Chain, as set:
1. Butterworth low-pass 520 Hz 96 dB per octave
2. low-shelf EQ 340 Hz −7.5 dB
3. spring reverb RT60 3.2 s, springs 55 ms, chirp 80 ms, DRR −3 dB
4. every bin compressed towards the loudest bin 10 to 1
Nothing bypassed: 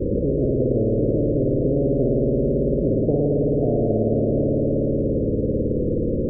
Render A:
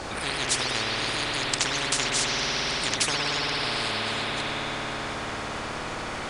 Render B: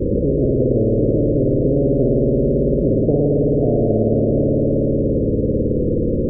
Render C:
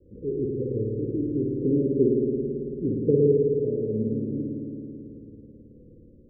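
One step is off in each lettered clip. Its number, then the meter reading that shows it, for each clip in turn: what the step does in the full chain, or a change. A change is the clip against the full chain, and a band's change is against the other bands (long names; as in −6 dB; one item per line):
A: 1, change in crest factor +12.0 dB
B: 2, change in integrated loudness +4.0 LU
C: 4, change in crest factor +6.0 dB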